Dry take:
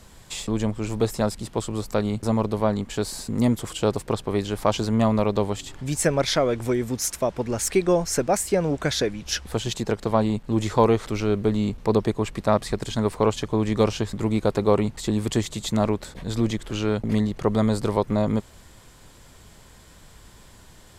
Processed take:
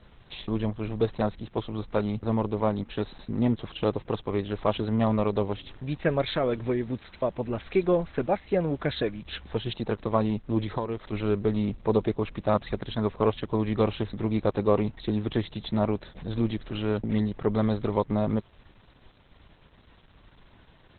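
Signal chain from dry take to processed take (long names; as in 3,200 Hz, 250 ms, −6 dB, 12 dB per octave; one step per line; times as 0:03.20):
0:03.92–0:05.71: Butterworth low-pass 6,900 Hz 72 dB per octave
0:10.62–0:11.13: downward compressor 5 to 1, threshold −24 dBFS, peak gain reduction 11 dB
level −3 dB
Opus 8 kbit/s 48,000 Hz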